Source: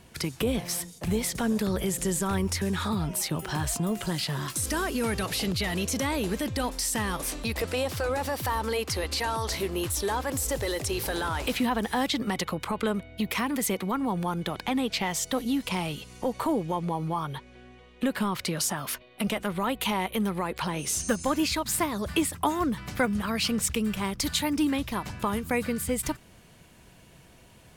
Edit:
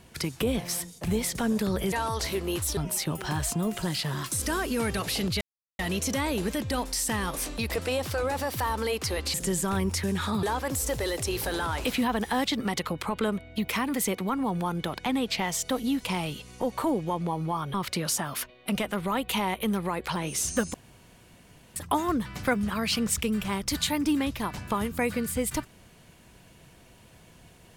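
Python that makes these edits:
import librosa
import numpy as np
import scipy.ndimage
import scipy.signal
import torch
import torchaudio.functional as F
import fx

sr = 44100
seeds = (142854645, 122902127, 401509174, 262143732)

y = fx.edit(x, sr, fx.swap(start_s=1.92, length_s=1.09, other_s=9.2, other_length_s=0.85),
    fx.insert_silence(at_s=5.65, length_s=0.38),
    fx.cut(start_s=17.36, length_s=0.9),
    fx.room_tone_fill(start_s=21.26, length_s=1.02), tone=tone)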